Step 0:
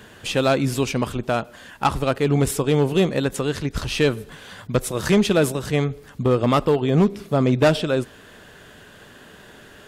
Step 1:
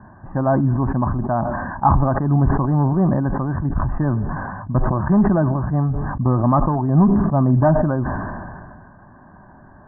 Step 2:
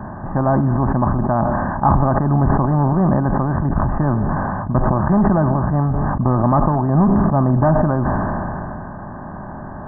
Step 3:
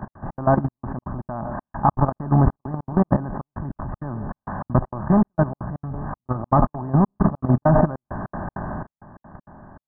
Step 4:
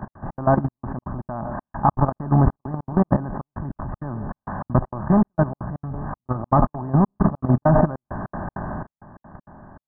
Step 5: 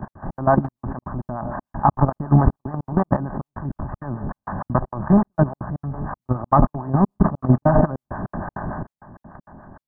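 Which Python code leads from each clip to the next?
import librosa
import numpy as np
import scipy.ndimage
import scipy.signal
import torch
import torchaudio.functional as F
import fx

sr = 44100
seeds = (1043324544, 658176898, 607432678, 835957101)

y1 = scipy.signal.sosfilt(scipy.signal.butter(12, 1500.0, 'lowpass', fs=sr, output='sos'), x)
y1 = y1 + 0.89 * np.pad(y1, (int(1.1 * sr / 1000.0), 0))[:len(y1)]
y1 = fx.sustainer(y1, sr, db_per_s=28.0)
y2 = fx.bin_compress(y1, sr, power=0.6)
y2 = y2 * librosa.db_to_amplitude(-2.0)
y3 = y2 + 10.0 ** (-16.5 / 20.0) * np.pad(y2, (int(161 * sr / 1000.0), 0))[:len(y2)]
y3 = fx.step_gate(y3, sr, bpm=198, pattern='x.xx.xxxx..x', floor_db=-60.0, edge_ms=4.5)
y3 = fx.level_steps(y3, sr, step_db=15)
y3 = y3 * librosa.db_to_amplitude(1.0)
y4 = y3
y5 = fx.harmonic_tremolo(y4, sr, hz=6.8, depth_pct=70, crossover_hz=570.0)
y5 = y5 * librosa.db_to_amplitude(4.5)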